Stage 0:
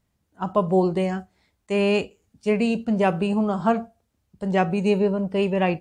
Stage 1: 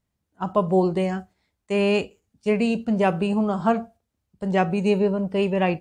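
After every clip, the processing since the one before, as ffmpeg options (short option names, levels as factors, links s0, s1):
-af "agate=range=0.501:threshold=0.00562:ratio=16:detection=peak"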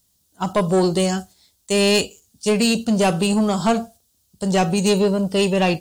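-af "aexciter=amount=6.3:drive=6:freq=3200,asoftclip=type=tanh:threshold=0.168,volume=1.78"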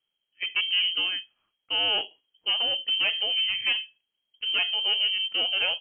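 -af "lowpass=f=2800:t=q:w=0.5098,lowpass=f=2800:t=q:w=0.6013,lowpass=f=2800:t=q:w=0.9,lowpass=f=2800:t=q:w=2.563,afreqshift=-3300,volume=0.398"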